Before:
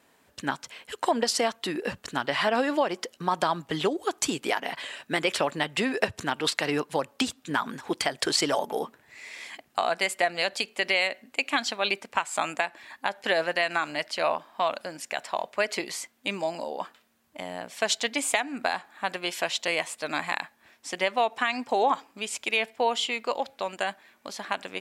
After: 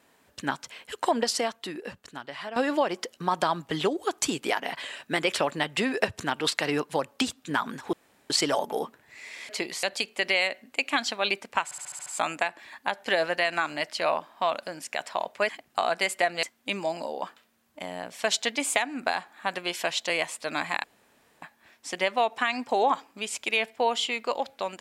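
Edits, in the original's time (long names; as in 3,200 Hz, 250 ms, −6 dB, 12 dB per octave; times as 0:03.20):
0:01.18–0:02.56: fade out quadratic, to −12.5 dB
0:07.93–0:08.30: fill with room tone
0:09.49–0:10.43: swap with 0:15.67–0:16.01
0:12.24: stutter 0.07 s, 7 plays
0:20.42: splice in room tone 0.58 s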